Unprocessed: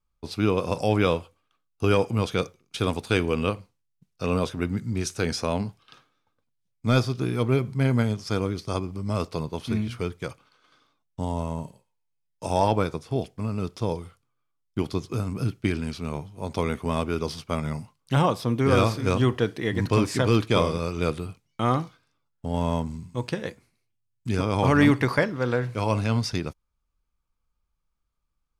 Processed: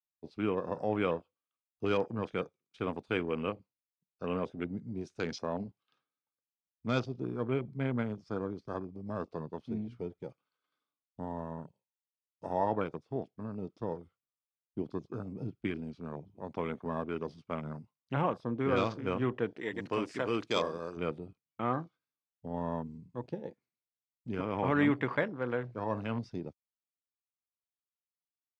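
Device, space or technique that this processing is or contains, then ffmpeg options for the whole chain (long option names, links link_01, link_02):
over-cleaned archive recording: -filter_complex "[0:a]highpass=160,lowpass=5300,afwtdn=0.0178,asettb=1/sr,asplit=3[link_01][link_02][link_03];[link_01]atrim=end=19.574[link_04];[link_02]atrim=start=19.57:end=20.97,asetpts=PTS-STARTPTS,afade=type=in:duration=0.004:curve=qsin,afade=type=out:start_time=1.396:duration=0.004:curve=qsin,bass=frequency=250:gain=-8,treble=frequency=4000:gain=11[link_05];[link_03]atrim=start=20.966[link_06];[link_04][link_05]acrossfade=duration=0.004:curve1=hsin:curve2=qsin[link_07];[link_07][link_06]acrossfade=duration=0.004:curve1=qsin:curve2=hsin,volume=-8dB"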